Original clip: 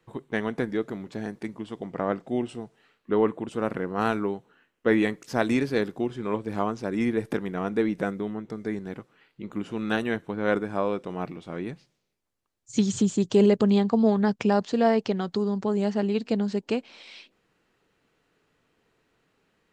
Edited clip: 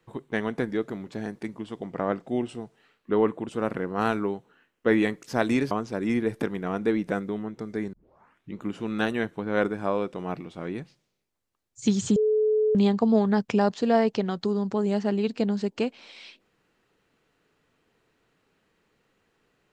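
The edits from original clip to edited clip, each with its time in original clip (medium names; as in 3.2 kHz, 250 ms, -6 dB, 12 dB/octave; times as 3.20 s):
5.71–6.62 s: delete
8.84 s: tape start 0.62 s
13.07–13.66 s: bleep 430 Hz -19 dBFS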